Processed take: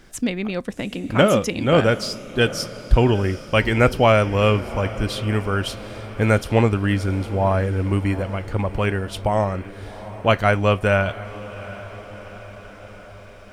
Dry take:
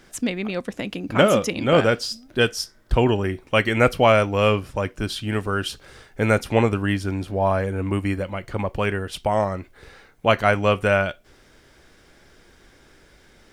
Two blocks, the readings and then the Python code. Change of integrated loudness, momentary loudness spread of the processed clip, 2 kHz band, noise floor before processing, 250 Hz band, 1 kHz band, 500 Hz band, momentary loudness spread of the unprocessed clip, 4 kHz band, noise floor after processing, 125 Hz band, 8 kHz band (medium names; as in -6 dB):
+1.5 dB, 17 LU, 0.0 dB, -54 dBFS, +2.0 dB, +0.5 dB, +0.5 dB, 11 LU, 0.0 dB, -42 dBFS, +4.5 dB, 0.0 dB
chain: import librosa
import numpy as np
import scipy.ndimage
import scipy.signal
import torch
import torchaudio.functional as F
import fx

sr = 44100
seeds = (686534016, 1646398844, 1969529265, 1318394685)

y = fx.low_shelf(x, sr, hz=120.0, db=8.0)
y = fx.echo_diffused(y, sr, ms=753, feedback_pct=62, wet_db=-16)